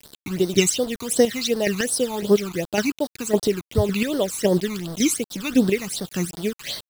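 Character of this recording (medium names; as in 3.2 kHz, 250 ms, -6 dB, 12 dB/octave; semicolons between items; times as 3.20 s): chopped level 1.8 Hz, depth 60%, duty 25%; a quantiser's noise floor 6-bit, dither none; phasing stages 12, 2.7 Hz, lowest notch 530–2500 Hz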